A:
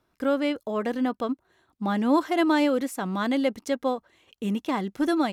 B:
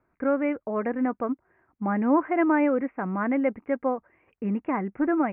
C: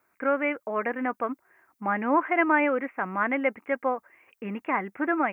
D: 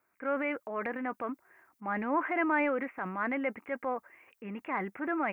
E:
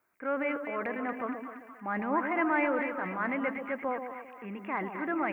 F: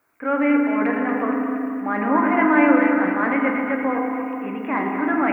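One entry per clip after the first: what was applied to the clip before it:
steep low-pass 2.4 kHz 72 dB/octave
tilt EQ +4.5 dB/octave; trim +3 dB
transient shaper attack -3 dB, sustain +6 dB; trim -6 dB
two-band feedback delay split 950 Hz, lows 133 ms, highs 235 ms, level -6.5 dB
reverberation RT60 2.6 s, pre-delay 4 ms, DRR 0.5 dB; trim +7.5 dB

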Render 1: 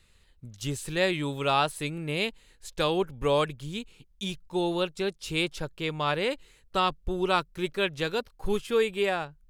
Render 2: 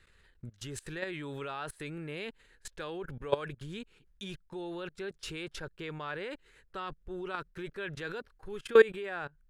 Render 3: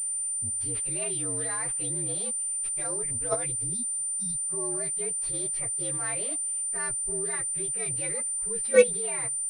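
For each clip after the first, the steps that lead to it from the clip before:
treble shelf 7.5 kHz -12 dB; level held to a coarse grid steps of 22 dB; fifteen-band graphic EQ 400 Hz +5 dB, 1.6 kHz +11 dB, 10 kHz +4 dB; trim +2 dB
frequency axis rescaled in octaves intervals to 119%; spectral replace 3.77–4.42 s, 290–3500 Hz after; class-D stage that switches slowly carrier 9.1 kHz; trim +4 dB

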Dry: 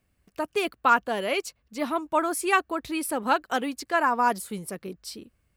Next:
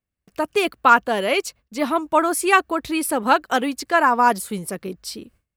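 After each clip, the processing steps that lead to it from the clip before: gate with hold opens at -54 dBFS; trim +6.5 dB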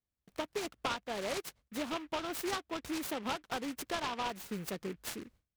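compression 6:1, threshold -26 dBFS, peak gain reduction 17 dB; delay time shaken by noise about 1.8 kHz, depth 0.096 ms; trim -8 dB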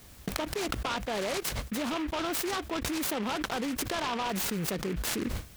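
level flattener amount 100%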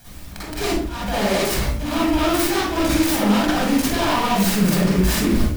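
slow attack 219 ms; companded quantiser 4-bit; reverberation RT60 0.50 s, pre-delay 42 ms, DRR -8 dB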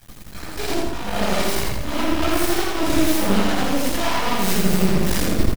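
phase randomisation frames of 100 ms; half-wave rectifier; feedback delay 83 ms, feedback 41%, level -3 dB

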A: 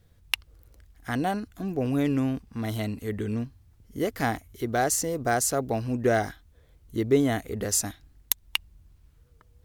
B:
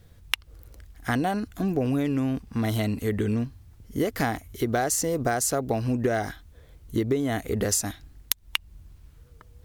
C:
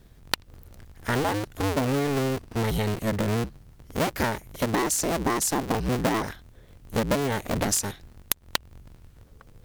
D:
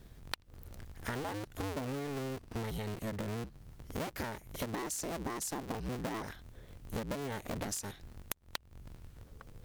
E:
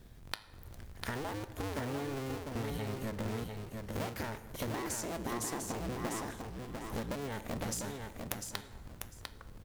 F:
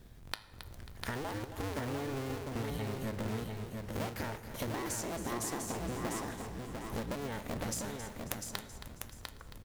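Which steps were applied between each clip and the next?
compression 12:1, threshold -28 dBFS, peak gain reduction 13.5 dB; trim +7 dB
cycle switcher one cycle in 2, inverted
compression 4:1, threshold -36 dBFS, peak gain reduction 15 dB; trim -1.5 dB
flange 1.3 Hz, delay 8.3 ms, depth 1.2 ms, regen +85%; on a send: feedback delay 699 ms, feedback 18%, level -5 dB; on the sum: plate-style reverb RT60 2.1 s, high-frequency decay 0.5×, DRR 13.5 dB; trim +4 dB
feedback delay 271 ms, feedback 43%, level -11.5 dB

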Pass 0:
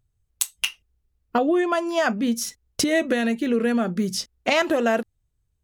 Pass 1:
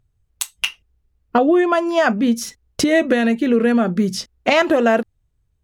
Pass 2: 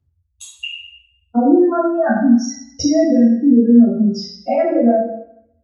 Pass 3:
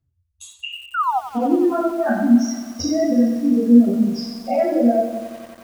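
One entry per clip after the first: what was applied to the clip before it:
treble shelf 4.4 kHz -8.5 dB; trim +6 dB
spectral contrast enhancement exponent 3; feedback comb 280 Hz, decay 0.95 s, mix 40%; reverberation RT60 0.65 s, pre-delay 3 ms, DRR -10 dB; trim -11 dB
painted sound fall, 0.94–1.20 s, 700–1500 Hz -16 dBFS; flange 1.2 Hz, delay 5.9 ms, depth 6.9 ms, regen +31%; bit-crushed delay 90 ms, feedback 80%, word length 6-bit, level -13.5 dB

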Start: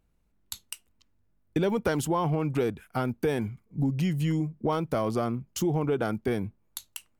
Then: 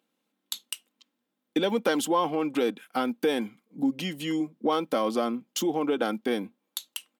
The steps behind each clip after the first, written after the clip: high-pass 230 Hz 24 dB/octave; peaking EQ 3.4 kHz +8 dB 0.56 oct; comb 3.8 ms, depth 41%; trim +1.5 dB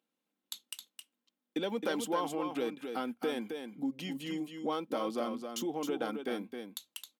hum notches 50/100 Hz; delay 266 ms -6.5 dB; trim -9 dB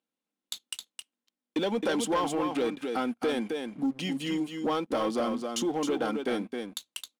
steep low-pass 11 kHz 48 dB/octave; waveshaping leveller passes 2

